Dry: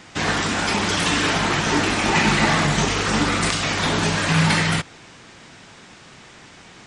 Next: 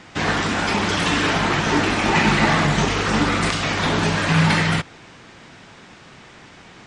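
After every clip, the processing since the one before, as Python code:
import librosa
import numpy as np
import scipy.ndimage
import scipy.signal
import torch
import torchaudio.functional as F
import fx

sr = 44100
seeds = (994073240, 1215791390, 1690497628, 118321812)

y = fx.lowpass(x, sr, hz=3800.0, slope=6)
y = F.gain(torch.from_numpy(y), 1.5).numpy()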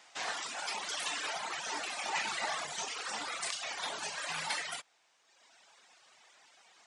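y = np.diff(x, prepend=0.0)
y = fx.dereverb_blind(y, sr, rt60_s=1.4)
y = fx.peak_eq(y, sr, hz=710.0, db=12.0, octaves=1.4)
y = F.gain(torch.from_numpy(y), -5.5).numpy()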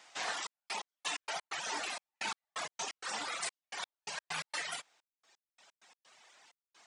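y = scipy.signal.sosfilt(scipy.signal.butter(2, 78.0, 'highpass', fs=sr, output='sos'), x)
y = fx.step_gate(y, sr, bpm=129, pattern='xxxx..x..x.x.', floor_db=-60.0, edge_ms=4.5)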